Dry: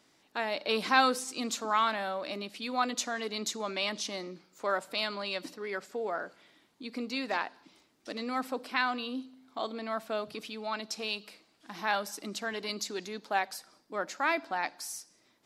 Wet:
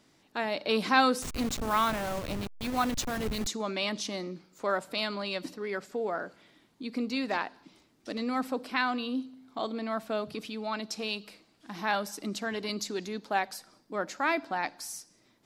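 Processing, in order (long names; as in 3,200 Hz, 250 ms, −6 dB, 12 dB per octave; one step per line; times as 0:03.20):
0:01.22–0:03.47: hold until the input has moved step −33.5 dBFS
low-shelf EQ 260 Hz +10 dB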